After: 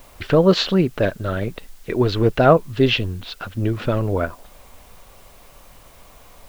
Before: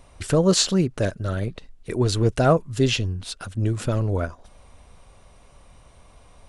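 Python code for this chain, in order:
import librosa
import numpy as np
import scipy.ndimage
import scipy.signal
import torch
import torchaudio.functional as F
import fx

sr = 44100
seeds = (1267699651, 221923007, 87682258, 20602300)

p1 = scipy.signal.sosfilt(scipy.signal.butter(4, 3700.0, 'lowpass', fs=sr, output='sos'), x)
p2 = fx.peak_eq(p1, sr, hz=74.0, db=-7.0, octaves=2.6)
p3 = fx.quant_dither(p2, sr, seeds[0], bits=8, dither='triangular')
p4 = p2 + (p3 * 10.0 ** (-8.0 / 20.0))
y = p4 * 10.0 ** (3.0 / 20.0)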